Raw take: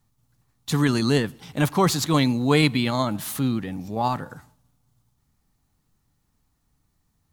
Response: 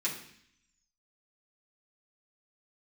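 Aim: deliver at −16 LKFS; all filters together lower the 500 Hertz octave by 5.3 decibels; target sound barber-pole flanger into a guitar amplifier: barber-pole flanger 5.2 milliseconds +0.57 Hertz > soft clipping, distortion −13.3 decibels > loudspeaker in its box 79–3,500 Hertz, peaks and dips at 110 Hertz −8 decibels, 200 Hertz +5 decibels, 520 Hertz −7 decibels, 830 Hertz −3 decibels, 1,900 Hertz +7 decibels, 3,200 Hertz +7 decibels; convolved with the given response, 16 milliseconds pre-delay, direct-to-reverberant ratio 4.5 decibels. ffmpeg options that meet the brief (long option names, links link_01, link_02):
-filter_complex "[0:a]equalizer=frequency=500:width_type=o:gain=-4,asplit=2[link_01][link_02];[1:a]atrim=start_sample=2205,adelay=16[link_03];[link_02][link_03]afir=irnorm=-1:irlink=0,volume=-9.5dB[link_04];[link_01][link_04]amix=inputs=2:normalize=0,asplit=2[link_05][link_06];[link_06]adelay=5.2,afreqshift=0.57[link_07];[link_05][link_07]amix=inputs=2:normalize=1,asoftclip=threshold=-18dB,highpass=79,equalizer=frequency=110:width_type=q:width=4:gain=-8,equalizer=frequency=200:width_type=q:width=4:gain=5,equalizer=frequency=520:width_type=q:width=4:gain=-7,equalizer=frequency=830:width_type=q:width=4:gain=-3,equalizer=frequency=1900:width_type=q:width=4:gain=7,equalizer=frequency=3200:width_type=q:width=4:gain=7,lowpass=frequency=3500:width=0.5412,lowpass=frequency=3500:width=1.3066,volume=11.5dB"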